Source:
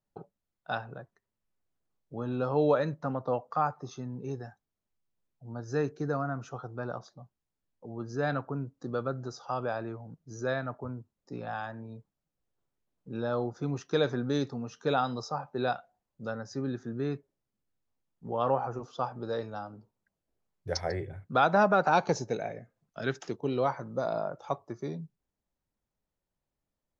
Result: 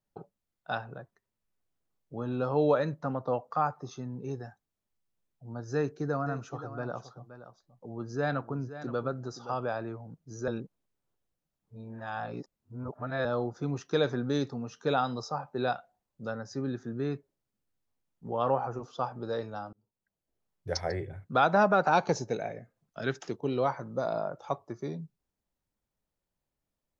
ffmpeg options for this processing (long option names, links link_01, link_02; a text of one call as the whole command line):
ffmpeg -i in.wav -filter_complex "[0:a]asettb=1/sr,asplit=3[link_01][link_02][link_03];[link_01]atrim=end=5.744[link_04];[link_02]atrim=start=5.74:end=9.55,asetpts=PTS-STARTPTS,afade=type=in:duration=0.004:curve=qsin,afade=type=out:start_time=3.806:duration=0.004:curve=qsin,aecho=1:1:522:0.224,atrim=end_sample=168021[link_05];[link_03]atrim=start=9.546[link_06];[link_04][link_05]acrossfade=duration=0.004:curve1=hsin:curve2=qsin[link_07];[link_07][link_06]acrossfade=duration=0.004:curve1=qsin:curve2=hsin,asplit=4[link_08][link_09][link_10][link_11];[link_08]atrim=end=10.482[link_12];[link_09]atrim=start=10.478:end=13.252,asetpts=PTS-STARTPTS,areverse[link_13];[link_10]atrim=start=13.248:end=19.73,asetpts=PTS-STARTPTS,afade=type=out:start_time=6.478:duration=0.004:curve=hsin[link_14];[link_11]atrim=start=19.73,asetpts=PTS-STARTPTS,afade=type=in:duration=1.07:curve=qsin[link_15];[link_12][link_13]acrossfade=duration=0.004:curve1=hsin:curve2=hsin[link_16];[link_14][link_15]concat=n=2:v=0:a=1[link_17];[link_16][link_17]acrossfade=duration=0.004:curve1=hsin:curve2=hsin" out.wav